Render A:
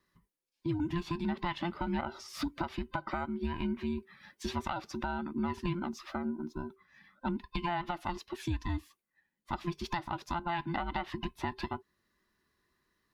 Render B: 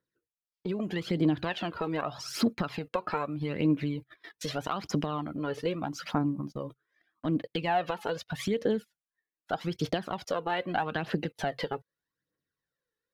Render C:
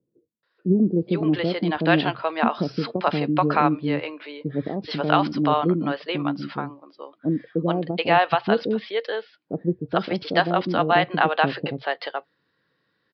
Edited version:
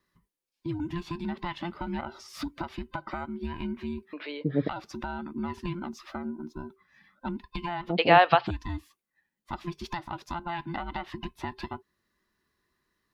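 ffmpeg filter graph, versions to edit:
ffmpeg -i take0.wav -i take1.wav -i take2.wav -filter_complex "[2:a]asplit=2[link_01][link_02];[0:a]asplit=3[link_03][link_04][link_05];[link_03]atrim=end=4.132[link_06];[link_01]atrim=start=4.128:end=4.692[link_07];[link_04]atrim=start=4.688:end=7.93[link_08];[link_02]atrim=start=7.87:end=8.51[link_09];[link_05]atrim=start=8.45[link_10];[link_06][link_07]acrossfade=duration=0.004:curve1=hsin:curve2=hsin[link_11];[link_11][link_08]acrossfade=duration=0.004:curve1=hsin:curve2=hsin[link_12];[link_12][link_09]acrossfade=duration=0.06:curve1=tri:curve2=tri[link_13];[link_13][link_10]acrossfade=duration=0.06:curve1=tri:curve2=tri" out.wav

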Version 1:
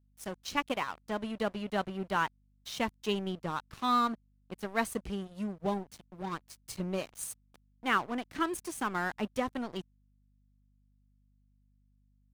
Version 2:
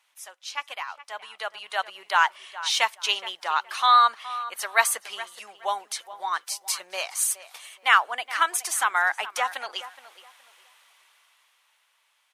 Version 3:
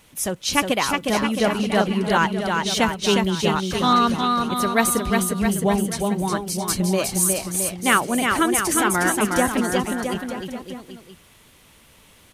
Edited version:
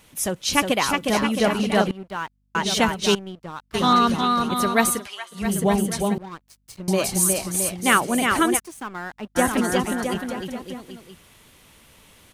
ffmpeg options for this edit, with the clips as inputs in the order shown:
ffmpeg -i take0.wav -i take1.wav -i take2.wav -filter_complex "[0:a]asplit=4[link_01][link_02][link_03][link_04];[2:a]asplit=6[link_05][link_06][link_07][link_08][link_09][link_10];[link_05]atrim=end=1.912[link_11];[link_01]atrim=start=1.908:end=2.552[link_12];[link_06]atrim=start=2.548:end=3.152[link_13];[link_02]atrim=start=3.148:end=3.742[link_14];[link_07]atrim=start=3.738:end=5.08[link_15];[1:a]atrim=start=4.84:end=5.55[link_16];[link_08]atrim=start=5.31:end=6.182[link_17];[link_03]atrim=start=6.178:end=6.882[link_18];[link_09]atrim=start=6.878:end=8.6[link_19];[link_04]atrim=start=8.56:end=9.39[link_20];[link_10]atrim=start=9.35[link_21];[link_11][link_12]acrossfade=duration=0.004:curve1=hsin:curve2=hsin[link_22];[link_22][link_13]acrossfade=duration=0.004:curve1=hsin:curve2=hsin[link_23];[link_23][link_14]acrossfade=duration=0.004:curve1=hsin:curve2=hsin[link_24];[link_24][link_15]acrossfade=duration=0.004:curve1=hsin:curve2=hsin[link_25];[link_25][link_16]acrossfade=duration=0.24:curve1=tri:curve2=tri[link_26];[link_26][link_17]acrossfade=duration=0.24:curve1=tri:curve2=tri[link_27];[link_27][link_18]acrossfade=duration=0.004:curve1=hsin:curve2=hsin[link_28];[link_28][link_19]acrossfade=duration=0.004:curve1=hsin:curve2=hsin[link_29];[link_29][link_20]acrossfade=duration=0.04:curve1=tri:curve2=tri[link_30];[link_30][link_21]acrossfade=duration=0.04:curve1=tri:curve2=tri" out.wav

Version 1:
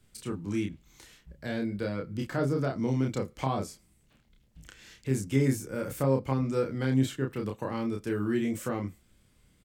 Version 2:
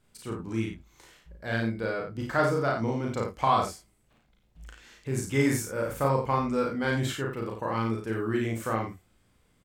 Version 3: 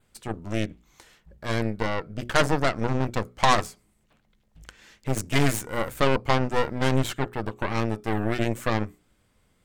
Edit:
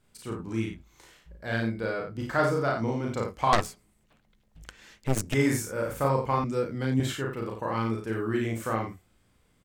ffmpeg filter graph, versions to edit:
ffmpeg -i take0.wav -i take1.wav -i take2.wav -filter_complex "[1:a]asplit=3[link_01][link_02][link_03];[link_01]atrim=end=3.532[link_04];[2:a]atrim=start=3.528:end=5.342[link_05];[link_02]atrim=start=5.338:end=6.442[link_06];[0:a]atrim=start=6.438:end=7.002[link_07];[link_03]atrim=start=6.998[link_08];[link_04][link_05]acrossfade=duration=0.004:curve1=hsin:curve2=hsin[link_09];[link_09][link_06]acrossfade=duration=0.004:curve1=hsin:curve2=hsin[link_10];[link_10][link_07]acrossfade=duration=0.004:curve1=hsin:curve2=hsin[link_11];[link_11][link_08]acrossfade=duration=0.004:curve1=hsin:curve2=hsin" out.wav

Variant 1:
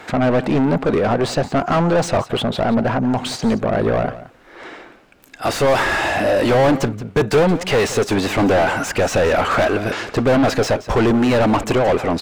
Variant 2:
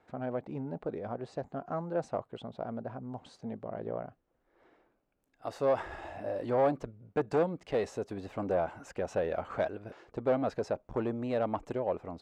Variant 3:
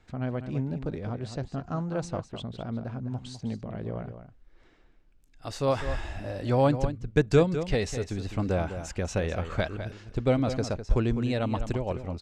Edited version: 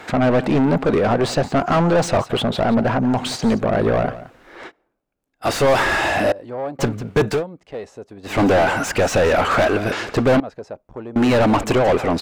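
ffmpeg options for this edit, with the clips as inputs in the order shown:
ffmpeg -i take0.wav -i take1.wav -filter_complex "[1:a]asplit=4[link_01][link_02][link_03][link_04];[0:a]asplit=5[link_05][link_06][link_07][link_08][link_09];[link_05]atrim=end=4.72[link_10];[link_01]atrim=start=4.66:end=5.47[link_11];[link_06]atrim=start=5.41:end=6.322[link_12];[link_02]atrim=start=6.318:end=6.792[link_13];[link_07]atrim=start=6.788:end=7.43[link_14];[link_03]atrim=start=7.27:end=8.39[link_15];[link_08]atrim=start=8.23:end=10.402[link_16];[link_04]atrim=start=10.398:end=11.162[link_17];[link_09]atrim=start=11.158[link_18];[link_10][link_11]acrossfade=duration=0.06:curve1=tri:curve2=tri[link_19];[link_19][link_12]acrossfade=duration=0.06:curve1=tri:curve2=tri[link_20];[link_20][link_13]acrossfade=duration=0.004:curve1=hsin:curve2=hsin[link_21];[link_21][link_14]acrossfade=duration=0.004:curve1=hsin:curve2=hsin[link_22];[link_22][link_15]acrossfade=duration=0.16:curve1=tri:curve2=tri[link_23];[link_23][link_16]acrossfade=duration=0.16:curve1=tri:curve2=tri[link_24];[link_24][link_17]acrossfade=duration=0.004:curve1=hsin:curve2=hsin[link_25];[link_25][link_18]acrossfade=duration=0.004:curve1=hsin:curve2=hsin" out.wav

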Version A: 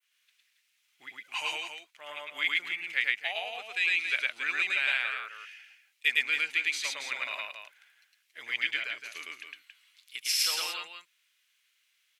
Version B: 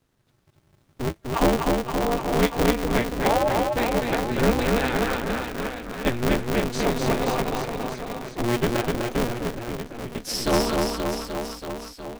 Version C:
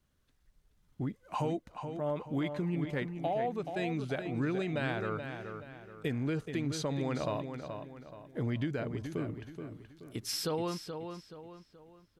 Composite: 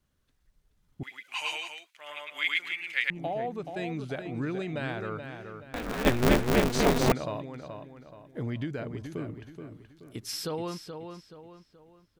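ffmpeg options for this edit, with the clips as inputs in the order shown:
ffmpeg -i take0.wav -i take1.wav -i take2.wav -filter_complex "[2:a]asplit=3[link_01][link_02][link_03];[link_01]atrim=end=1.032[link_04];[0:a]atrim=start=1.028:end=3.102[link_05];[link_02]atrim=start=3.098:end=5.742[link_06];[1:a]atrim=start=5.738:end=7.122[link_07];[link_03]atrim=start=7.118[link_08];[link_04][link_05]acrossfade=duration=0.004:curve1=hsin:curve2=hsin[link_09];[link_09][link_06]acrossfade=duration=0.004:curve1=hsin:curve2=hsin[link_10];[link_10][link_07]acrossfade=duration=0.004:curve1=hsin:curve2=hsin[link_11];[link_11][link_08]acrossfade=duration=0.004:curve1=hsin:curve2=hsin" out.wav

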